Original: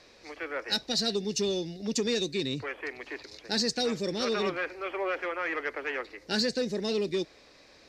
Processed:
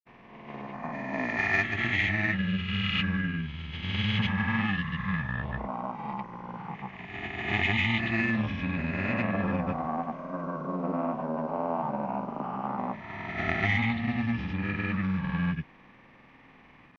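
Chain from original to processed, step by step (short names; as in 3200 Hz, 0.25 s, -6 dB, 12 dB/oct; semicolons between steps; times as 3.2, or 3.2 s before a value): spectral swells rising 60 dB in 0.86 s; wide varispeed 0.464×; grains, pitch spread up and down by 0 st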